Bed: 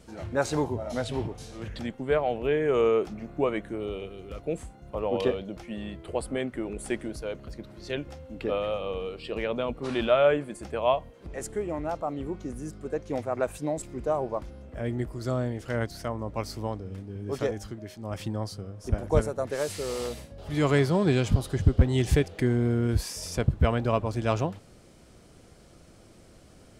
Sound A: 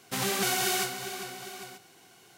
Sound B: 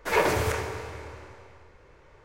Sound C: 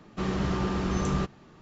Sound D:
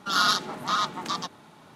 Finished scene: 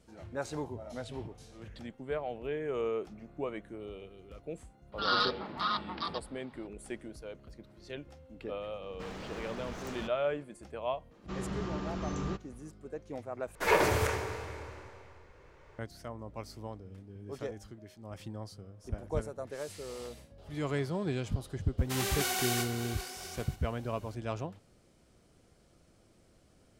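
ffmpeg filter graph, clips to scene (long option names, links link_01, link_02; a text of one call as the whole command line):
ffmpeg -i bed.wav -i cue0.wav -i cue1.wav -i cue2.wav -i cue3.wav -filter_complex "[3:a]asplit=2[link_01][link_02];[0:a]volume=-10.5dB[link_03];[4:a]aresample=11025,aresample=44100[link_04];[link_01]aeval=exprs='0.0376*(abs(mod(val(0)/0.0376+3,4)-2)-1)':channel_layout=same[link_05];[1:a]highpass=240[link_06];[link_03]asplit=2[link_07][link_08];[link_07]atrim=end=13.554[link_09];[2:a]atrim=end=2.24,asetpts=PTS-STARTPTS,volume=-2.5dB[link_10];[link_08]atrim=start=15.786[link_11];[link_04]atrim=end=1.75,asetpts=PTS-STARTPTS,volume=-6.5dB,afade=type=in:duration=0.004:curve=hsin,afade=type=out:start_time=1.746:duration=0.004:curve=hsin,adelay=4920[link_12];[link_05]atrim=end=1.61,asetpts=PTS-STARTPTS,volume=-9.5dB,afade=type=in:duration=0.004:curve=hsin,afade=type=out:start_time=1.606:duration=0.004:curve=hsin,adelay=388962S[link_13];[link_02]atrim=end=1.61,asetpts=PTS-STARTPTS,volume=-9dB,afade=type=in:duration=0.004:curve=hsin,afade=type=out:start_time=1.606:duration=0.004:curve=hsin,adelay=11110[link_14];[link_06]atrim=end=2.37,asetpts=PTS-STARTPTS,volume=-4.5dB,afade=type=in:duration=0.004:curve=hsin,afade=type=out:start_time=2.366:duration=0.004:curve=hsin,adelay=21780[link_15];[link_09][link_10]acrossfade=duration=0.004:curve1=hsin:curve2=hsin[link_16];[link_16][link_11]acrossfade=duration=0.004:curve1=hsin:curve2=hsin[link_17];[link_17][link_12][link_13][link_14][link_15]amix=inputs=5:normalize=0" out.wav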